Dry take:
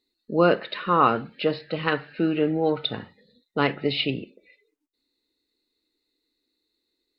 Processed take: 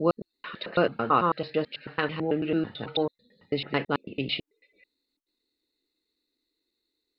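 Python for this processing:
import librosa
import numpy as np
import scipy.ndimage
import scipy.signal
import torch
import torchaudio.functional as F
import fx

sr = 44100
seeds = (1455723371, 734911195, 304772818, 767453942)

y = fx.block_reorder(x, sr, ms=110.0, group=4)
y = y * librosa.db_to_amplitude(-3.5)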